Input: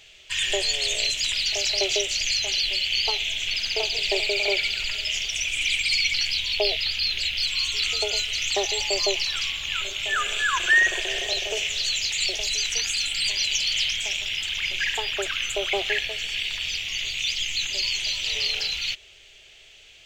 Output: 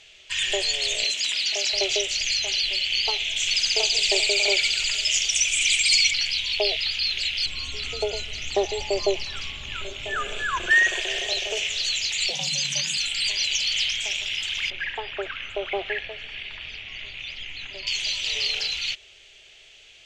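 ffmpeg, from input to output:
ffmpeg -i in.wav -filter_complex "[0:a]asettb=1/sr,asplit=3[link_01][link_02][link_03];[link_01]atrim=end=1.034[link_04];[link_02]atrim=start=1.03:end=1.73,asetpts=PTS-STARTPTS,afade=type=in:duration=0.004:curve=qsin,afade=type=out:start_time=0.696:duration=0.004:curve=qsin,highpass=frequency=180:width=0.5412,highpass=frequency=180:width=1.3066[link_05];[link_03]atrim=start=1.726[link_06];[link_04][link_05]acrossfade=duration=0.004:curve1=hsin:curve2=qsin[link_07];[link_07][link_06]acrossfade=duration=0.004:curve1=qsin:curve2=hsin,asettb=1/sr,asplit=3[link_08][link_09][link_10];[link_08]atrim=end=3.364[link_11];[link_09]atrim=start=3.36:end=6.11,asetpts=PTS-STARTPTS,afade=type=in:duration=0.004:curve=qsin,afade=type=out:start_time=2.746:duration=0.004:curve=qsin,equalizer=frequency=7800:width=0.96:gain=13[link_12];[link_10]atrim=start=6.106[link_13];[link_11][link_12]acrossfade=duration=0.004:curve1=hsin:curve2=qsin[link_14];[link_14][link_13]acrossfade=duration=0.004:curve1=qsin:curve2=hsin,asettb=1/sr,asplit=3[link_15][link_16][link_17];[link_15]atrim=end=7.464[link_18];[link_16]atrim=start=7.46:end=10.71,asetpts=PTS-STARTPTS,afade=type=in:duration=0.004:curve=qsin,afade=type=out:start_time=3.246:duration=0.004:curve=qsin,tiltshelf=frequency=970:gain=8.5[link_19];[link_17]atrim=start=10.706[link_20];[link_18][link_19]acrossfade=duration=0.004:curve1=hsin:curve2=qsin[link_21];[link_21][link_20]acrossfade=duration=0.004:curve1=qsin:curve2=hsin,asettb=1/sr,asplit=3[link_22][link_23][link_24];[link_22]atrim=end=12.304[link_25];[link_23]atrim=start=12.3:end=12.97,asetpts=PTS-STARTPTS,afade=type=in:duration=0.004:curve=qsin,afade=type=out:start_time=0.666:duration=0.004:curve=qsin,afreqshift=130[link_26];[link_24]atrim=start=12.966[link_27];[link_25][link_26]acrossfade=duration=0.004:curve1=hsin:curve2=qsin[link_28];[link_28][link_27]acrossfade=duration=0.004:curve1=qsin:curve2=hsin,asettb=1/sr,asplit=3[link_29][link_30][link_31];[link_29]atrim=end=14.704[link_32];[link_30]atrim=start=14.7:end=17.87,asetpts=PTS-STARTPTS,afade=type=in:duration=0.004:curve=qsin,afade=type=out:start_time=3.166:duration=0.004:curve=qsin,lowpass=1900[link_33];[link_31]atrim=start=17.866[link_34];[link_32][link_33]acrossfade=duration=0.004:curve1=hsin:curve2=qsin[link_35];[link_35][link_34]acrossfade=duration=0.004:curve1=qsin:curve2=hsin,lowpass=9600,lowshelf=frequency=170:gain=-4" out.wav

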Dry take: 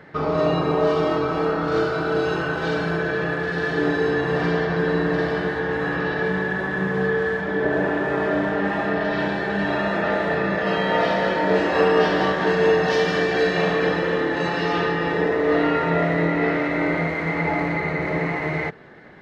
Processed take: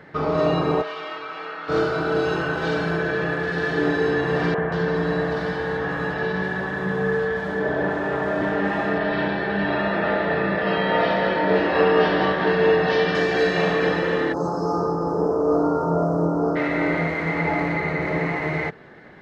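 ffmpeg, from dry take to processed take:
ffmpeg -i in.wav -filter_complex "[0:a]asplit=3[link_01][link_02][link_03];[link_01]afade=type=out:start_time=0.81:duration=0.02[link_04];[link_02]bandpass=frequency=2400:width_type=q:width=1.2,afade=type=in:start_time=0.81:duration=0.02,afade=type=out:start_time=1.68:duration=0.02[link_05];[link_03]afade=type=in:start_time=1.68:duration=0.02[link_06];[link_04][link_05][link_06]amix=inputs=3:normalize=0,asettb=1/sr,asplit=3[link_07][link_08][link_09];[link_07]atrim=end=4.544[link_10];[link_08]atrim=start=4.54:end=8.42,asetpts=PTS-STARTPTS,afade=type=in:duration=0.004:curve=qsin,afade=type=out:start_time=3.876:duration=0.004:curve=qsin,acrossover=split=330|2300[link_11][link_12][link_13];[link_11]adelay=40[link_14];[link_13]adelay=180[link_15];[link_14][link_12][link_15]amix=inputs=3:normalize=0,atrim=end_sample=171108[link_16];[link_09]atrim=start=8.416[link_17];[link_10][link_16]acrossfade=duration=0.004:curve1=hsin:curve2=qsin[link_18];[link_18][link_17]acrossfade=duration=0.004:curve1=qsin:curve2=hsin,asettb=1/sr,asplit=3[link_19][link_20][link_21];[link_19]atrim=end=8.984[link_22];[link_20]atrim=start=8.98:end=13.15,asetpts=PTS-STARTPTS,afade=type=in:duration=0.004:curve=qsin,afade=type=out:start_time=4.166:duration=0.004:curve=qsin,lowpass=frequency=4600:width=0.5412,lowpass=frequency=4600:width=1.3066[link_23];[link_21]atrim=start=13.146[link_24];[link_22][link_23]acrossfade=duration=0.004:curve1=hsin:curve2=qsin[link_25];[link_25][link_24]acrossfade=duration=0.004:curve1=qsin:curve2=hsin,asplit=3[link_26][link_27][link_28];[link_26]afade=type=out:start_time=14.32:duration=0.02[link_29];[link_27]asuperstop=centerf=2600:order=12:qfactor=0.7,afade=type=in:start_time=14.32:duration=0.02,afade=type=out:start_time=16.55:duration=0.02[link_30];[link_28]afade=type=in:start_time=16.55:duration=0.02[link_31];[link_29][link_30][link_31]amix=inputs=3:normalize=0" out.wav

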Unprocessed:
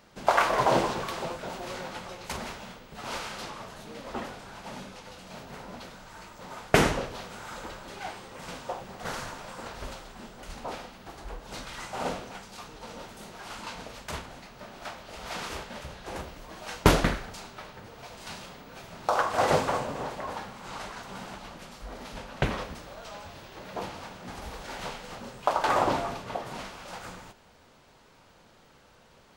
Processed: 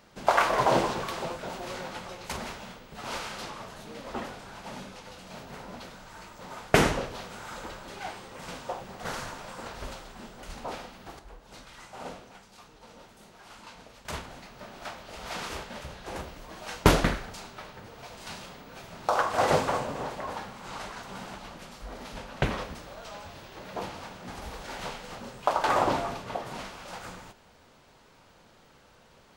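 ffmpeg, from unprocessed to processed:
ffmpeg -i in.wav -filter_complex "[0:a]asplit=3[link_01][link_02][link_03];[link_01]atrim=end=11.192[link_04];[link_02]atrim=start=11.188:end=14.052,asetpts=PTS-STARTPTS,volume=-8.5dB[link_05];[link_03]atrim=start=14.048[link_06];[link_04][link_05]acrossfade=duration=0.004:curve1=hsin:curve2=hsin[link_07];[link_07][link_06]acrossfade=duration=0.004:curve1=hsin:curve2=hsin" out.wav

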